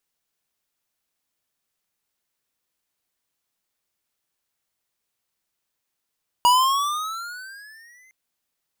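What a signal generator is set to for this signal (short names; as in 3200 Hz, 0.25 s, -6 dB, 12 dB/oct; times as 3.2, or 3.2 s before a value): gliding synth tone square, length 1.66 s, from 961 Hz, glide +13.5 st, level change -40 dB, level -14 dB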